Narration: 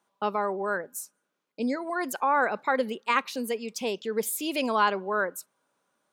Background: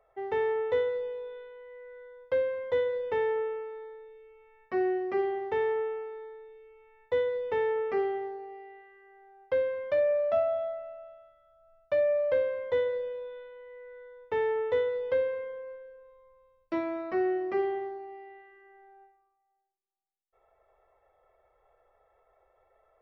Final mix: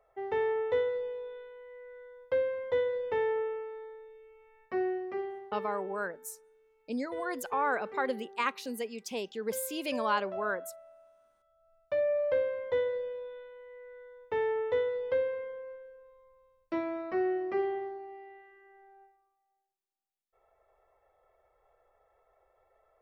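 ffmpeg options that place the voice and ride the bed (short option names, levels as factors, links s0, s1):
-filter_complex "[0:a]adelay=5300,volume=0.501[s0];[1:a]volume=2.99,afade=t=out:st=4.59:d=0.92:silence=0.266073,afade=t=in:st=11.14:d=1.09:silence=0.281838[s1];[s0][s1]amix=inputs=2:normalize=0"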